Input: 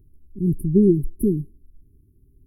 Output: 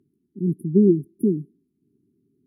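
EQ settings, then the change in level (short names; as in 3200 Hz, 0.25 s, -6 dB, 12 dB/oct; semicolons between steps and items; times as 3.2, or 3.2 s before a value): HPF 180 Hz 24 dB/oct; air absorption 55 m; low shelf 340 Hz +3.5 dB; -1.5 dB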